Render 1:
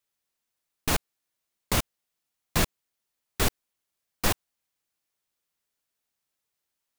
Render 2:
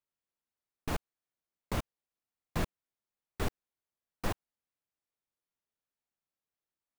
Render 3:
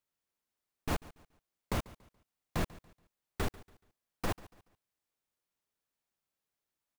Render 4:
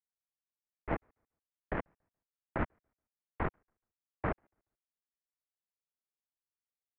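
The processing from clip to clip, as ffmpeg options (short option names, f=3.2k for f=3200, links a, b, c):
-af "highshelf=f=2.4k:g=-12,volume=-6.5dB"
-af "alimiter=level_in=2dB:limit=-24dB:level=0:latency=1,volume=-2dB,aecho=1:1:142|284|426:0.1|0.033|0.0109,volume=3.5dB"
-af "aeval=exprs='0.0794*(cos(1*acos(clip(val(0)/0.0794,-1,1)))-cos(1*PI/2))+0.0126*(cos(4*acos(clip(val(0)/0.0794,-1,1)))-cos(4*PI/2))+0.0126*(cos(7*acos(clip(val(0)/0.0794,-1,1)))-cos(7*PI/2))':c=same,highpass=f=320:t=q:w=0.5412,highpass=f=320:t=q:w=1.307,lowpass=f=2.4k:t=q:w=0.5176,lowpass=f=2.4k:t=q:w=0.7071,lowpass=f=2.4k:t=q:w=1.932,afreqshift=-390,volume=3.5dB"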